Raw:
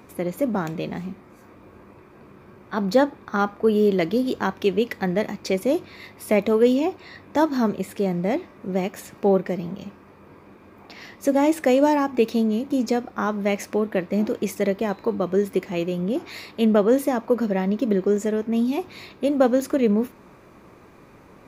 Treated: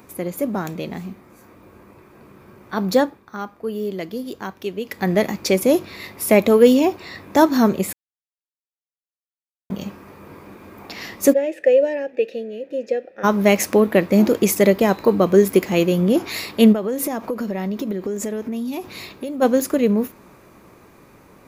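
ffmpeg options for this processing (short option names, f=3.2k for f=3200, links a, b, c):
-filter_complex "[0:a]asplit=3[a][b][c];[a]afade=t=out:st=11.32:d=0.02[d];[b]asplit=3[e][f][g];[e]bandpass=f=530:t=q:w=8,volume=0dB[h];[f]bandpass=f=1.84k:t=q:w=8,volume=-6dB[i];[g]bandpass=f=2.48k:t=q:w=8,volume=-9dB[j];[h][i][j]amix=inputs=3:normalize=0,afade=t=in:st=11.32:d=0.02,afade=t=out:st=13.23:d=0.02[k];[c]afade=t=in:st=13.23:d=0.02[l];[d][k][l]amix=inputs=3:normalize=0,asplit=3[m][n][o];[m]afade=t=out:st=16.72:d=0.02[p];[n]acompressor=threshold=-29dB:ratio=5:attack=3.2:release=140:knee=1:detection=peak,afade=t=in:st=16.72:d=0.02,afade=t=out:st=19.41:d=0.02[q];[o]afade=t=in:st=19.41:d=0.02[r];[p][q][r]amix=inputs=3:normalize=0,asplit=5[s][t][u][v][w];[s]atrim=end=3.23,asetpts=PTS-STARTPTS,afade=t=out:st=2.94:d=0.29:silence=0.281838[x];[t]atrim=start=3.23:end=4.84,asetpts=PTS-STARTPTS,volume=-11dB[y];[u]atrim=start=4.84:end=7.93,asetpts=PTS-STARTPTS,afade=t=in:d=0.29:silence=0.281838,afade=t=out:st=3.086:d=0.004:c=hsin[z];[v]atrim=start=7.93:end=9.7,asetpts=PTS-STARTPTS,volume=0[aa];[w]atrim=start=9.7,asetpts=PTS-STARTPTS,afade=t=in:d=0.004:c=hsin[ab];[x][y][z][aa][ab]concat=n=5:v=0:a=1,highshelf=f=7.6k:g=11.5,dynaudnorm=f=640:g=11:m=11.5dB"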